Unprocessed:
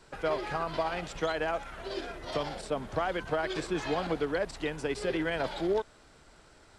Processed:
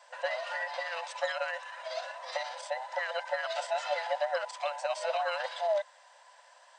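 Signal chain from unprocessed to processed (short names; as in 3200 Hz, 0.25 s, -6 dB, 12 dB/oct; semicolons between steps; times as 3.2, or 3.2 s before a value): band inversion scrambler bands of 1000 Hz; FFT band-pass 500–9100 Hz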